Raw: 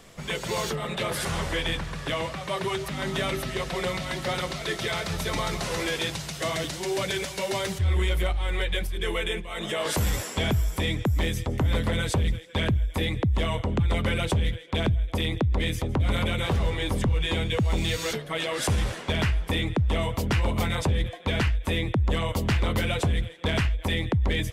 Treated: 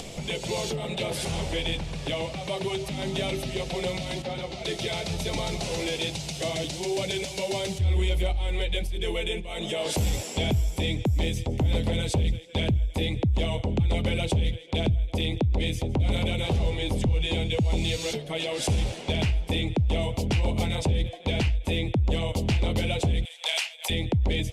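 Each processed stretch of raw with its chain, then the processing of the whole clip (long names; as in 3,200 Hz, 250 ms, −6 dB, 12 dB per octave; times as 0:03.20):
0:04.22–0:04.65: low-pass filter 3,000 Hz 6 dB per octave + log-companded quantiser 8 bits + string-ensemble chorus
0:23.25–0:23.90: high-pass filter 630 Hz 24 dB per octave + spectral tilt +3.5 dB per octave
whole clip: low-pass filter 10,000 Hz 12 dB per octave; flat-topped bell 1,400 Hz −11.5 dB 1.1 octaves; upward compression, threshold −28 dBFS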